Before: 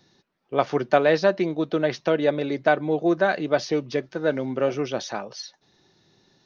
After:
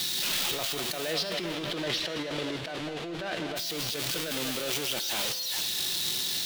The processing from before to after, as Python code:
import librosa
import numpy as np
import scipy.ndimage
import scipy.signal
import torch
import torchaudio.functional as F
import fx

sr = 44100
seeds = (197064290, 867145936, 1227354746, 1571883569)

y = x + 0.5 * 10.0 ** (-13.0 / 20.0) * np.diff(np.sign(x), prepend=np.sign(x[:1]))
y = fx.lowpass(y, sr, hz=fx.line((1.11, 4800.0), (3.55, 2800.0)), slope=12, at=(1.11, 3.55), fade=0.02)
y = fx.backlash(y, sr, play_db=-27.5)
y = fx.echo_feedback(y, sr, ms=204, feedback_pct=57, wet_db=-15)
y = fx.over_compress(y, sr, threshold_db=-26.0, ratio=-1.0)
y = fx.peak_eq(y, sr, hz=3400.0, db=11.0, octaves=1.2)
y = fx.comb_fb(y, sr, f0_hz=170.0, decay_s=1.5, harmonics='all', damping=0.0, mix_pct=70)
y = fx.pre_swell(y, sr, db_per_s=29.0)